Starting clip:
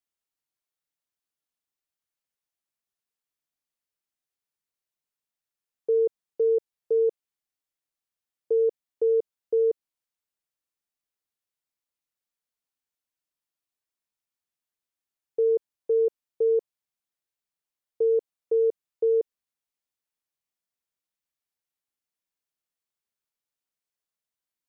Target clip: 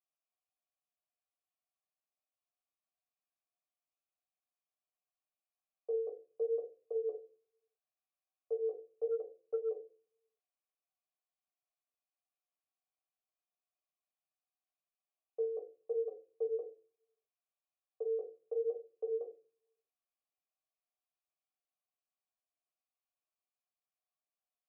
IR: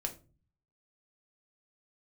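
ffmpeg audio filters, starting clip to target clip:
-filter_complex "[0:a]flanger=delay=8.6:depth=9.9:regen=6:speed=0.74:shape=sinusoidal[link_01];[1:a]atrim=start_sample=2205[link_02];[link_01][link_02]afir=irnorm=-1:irlink=0,asettb=1/sr,asplit=3[link_03][link_04][link_05];[link_03]atrim=end=9.114[link_06];[link_04]atrim=start=9.11:end=9.69,asetpts=PTS-STARTPTS,afade=type=in:duration=0.004:curve=qsin,afade=type=out:start_time=0.576:duration=0.004:curve=qsin,aeval=exprs='0.15*(cos(1*acos(clip(val(0)/0.15,-1,1)))-cos(1*PI/2))+0.00473*(cos(3*acos(clip(val(0)/0.15,-1,1)))-cos(3*PI/2))':channel_layout=same[link_07];[link_05]atrim=start=9.686[link_08];[link_06][link_07]acrossfade=duration=0.004:curve1=hsin:curve2=qsin[link_09];[link_09][link_08]acrossfade=duration=0.004:curve1=qsin:curve2=hsin,asplit=3[link_10][link_11][link_12];[link_10]bandpass=frequency=730:width_type=q:width=8,volume=0dB[link_13];[link_11]bandpass=frequency=1090:width_type=q:width=8,volume=-6dB[link_14];[link_12]bandpass=frequency=2440:width_type=q:width=8,volume=-9dB[link_15];[link_13][link_14][link_15]amix=inputs=3:normalize=0,acrossover=split=340[link_16][link_17];[link_16]alimiter=level_in=30.5dB:limit=-24dB:level=0:latency=1,volume=-30.5dB[link_18];[link_18][link_17]amix=inputs=2:normalize=0,volume=7dB"

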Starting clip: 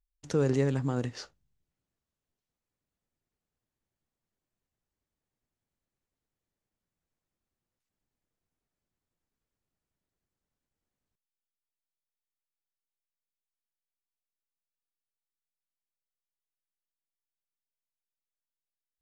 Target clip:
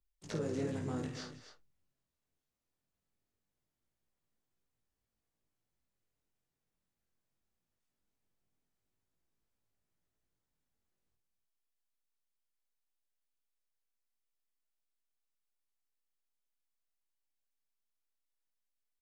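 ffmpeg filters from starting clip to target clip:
ffmpeg -i in.wav -filter_complex "[0:a]acrossover=split=92|4500[link_01][link_02][link_03];[link_01]acompressor=threshold=-49dB:ratio=4[link_04];[link_02]acompressor=threshold=-34dB:ratio=4[link_05];[link_03]acompressor=threshold=-53dB:ratio=4[link_06];[link_04][link_05][link_06]amix=inputs=3:normalize=0,asplit=3[link_07][link_08][link_09];[link_08]asetrate=33038,aresample=44100,atempo=1.33484,volume=-10dB[link_10];[link_09]asetrate=55563,aresample=44100,atempo=0.793701,volume=-9dB[link_11];[link_07][link_10][link_11]amix=inputs=3:normalize=0,flanger=delay=18:depth=4.8:speed=0.21,asplit=2[link_12][link_13];[link_13]aecho=0:1:51|188|264|291:0.447|0.15|0.224|0.2[link_14];[link_12][link_14]amix=inputs=2:normalize=0" out.wav

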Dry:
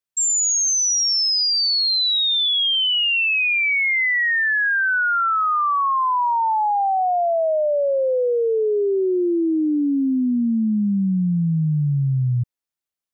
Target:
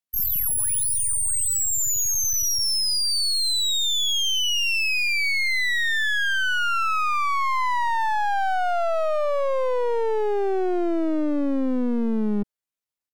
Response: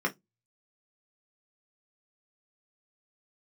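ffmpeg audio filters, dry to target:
-af "asetrate=74167,aresample=44100,atempo=0.594604,aeval=exprs='clip(val(0),-1,0.0224)':channel_layout=same"

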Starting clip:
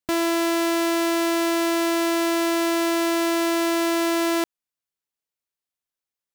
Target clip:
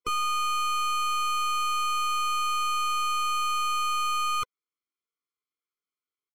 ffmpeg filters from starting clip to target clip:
ffmpeg -i in.wav -af "highpass=200,asetrate=80880,aresample=44100,atempo=0.545254,acontrast=66,asoftclip=type=tanh:threshold=-15dB,adynamicsmooth=sensitivity=2.5:basefreq=3800,afftfilt=real='re*eq(mod(floor(b*sr/1024/500),2),0)':imag='im*eq(mod(floor(b*sr/1024/500),2),0)':win_size=1024:overlap=0.75" out.wav

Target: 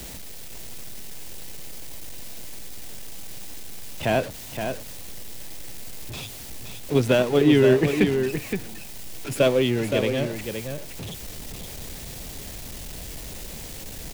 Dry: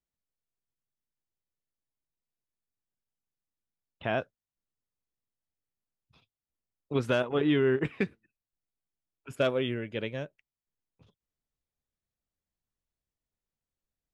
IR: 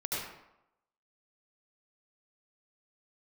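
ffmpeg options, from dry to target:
-filter_complex "[0:a]aeval=exprs='val(0)+0.5*0.0158*sgn(val(0))':channel_layout=same,aecho=1:1:519:0.447,acrossover=split=170|990|1500[link_01][link_02][link_03][link_04];[link_03]acrusher=samples=26:mix=1:aa=0.000001[link_05];[link_01][link_02][link_05][link_04]amix=inputs=4:normalize=0,volume=7.5dB"

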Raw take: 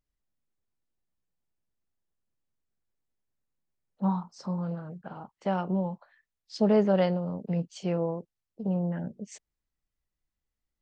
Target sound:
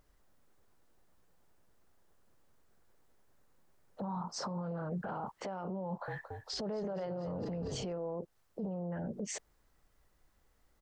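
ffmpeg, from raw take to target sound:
ffmpeg -i in.wav -filter_complex "[0:a]acompressor=threshold=-38dB:ratio=6,firequalizer=gain_entry='entry(210,0);entry(460,6);entry(1400,5);entry(2400,-2)':delay=0.05:min_phase=1,asettb=1/sr,asplit=3[link_01][link_02][link_03];[link_01]atrim=end=5.854[link_04];[link_02]atrim=start=5.85:end=7.93,asetpts=PTS-STARTPTS,afade=type=in:duration=0.004:curve=qsin,afade=type=out:start_time=2.076:duration=0.004:curve=qsin,asplit=8[link_05][link_06][link_07][link_08][link_09][link_10][link_11][link_12];[link_06]adelay=226,afreqshift=-39,volume=-14dB[link_13];[link_07]adelay=452,afreqshift=-78,volume=-18dB[link_14];[link_08]adelay=678,afreqshift=-117,volume=-22dB[link_15];[link_09]adelay=904,afreqshift=-156,volume=-26dB[link_16];[link_10]adelay=1130,afreqshift=-195,volume=-30.1dB[link_17];[link_11]adelay=1356,afreqshift=-234,volume=-34.1dB[link_18];[link_12]adelay=1582,afreqshift=-273,volume=-38.1dB[link_19];[link_05][link_13][link_14][link_15][link_16][link_17][link_18][link_19]amix=inputs=8:normalize=0,atrim=end_sample=91728[link_20];[link_03]atrim=start=7.926[link_21];[link_04][link_20]acrossfade=duration=0.004:curve1=hsin:curve2=qsin[link_22];[link_22][link_21]acrossfade=duration=0.004:curve1=qsin:curve2=hsin,alimiter=level_in=22.5dB:limit=-24dB:level=0:latency=1:release=31,volume=-22.5dB,volume=15.5dB" out.wav

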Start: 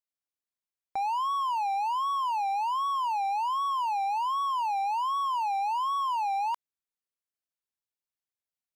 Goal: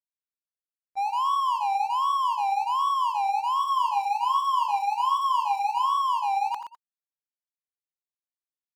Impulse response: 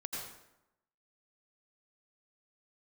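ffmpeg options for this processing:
-filter_complex "[0:a]bandreject=frequency=890:width=22,agate=range=-25dB:threshold=-30dB:ratio=16:detection=peak,asettb=1/sr,asplit=3[link_01][link_02][link_03];[link_01]atrim=end=3.584[link_04];[link_02]atrim=start=3.58:end=5.86,asetpts=PTS-STARTPTS,afade=type=in:duration=0.004:curve=qsin,afade=type=out:start_time=2.276:duration=0.004:curve=qsin,asplit=2[link_05][link_06];[link_06]adelay=21,volume=-5dB[link_07];[link_05][link_07]amix=inputs=2:normalize=0,atrim=end_sample=100548[link_08];[link_03]atrim=start=5.856[link_09];[link_04][link_08]acrossfade=duration=0.004:curve1=hsin:curve2=qsin[link_10];[link_10][link_09]acrossfade=duration=0.004:curve1=qsin:curve2=hsin,aecho=1:1:122:0.335[link_11];[1:a]atrim=start_sample=2205,afade=type=out:start_time=0.13:duration=0.01,atrim=end_sample=6174[link_12];[link_11][link_12]afir=irnorm=-1:irlink=0,volume=8dB"

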